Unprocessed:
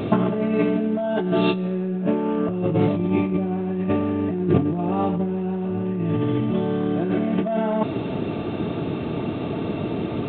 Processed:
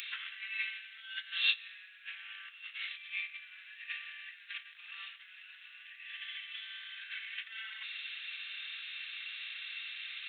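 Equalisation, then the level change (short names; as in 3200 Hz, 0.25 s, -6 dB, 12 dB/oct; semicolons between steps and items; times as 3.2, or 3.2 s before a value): steep high-pass 1700 Hz 48 dB/oct; high shelf 3700 Hz +8 dB; -1.0 dB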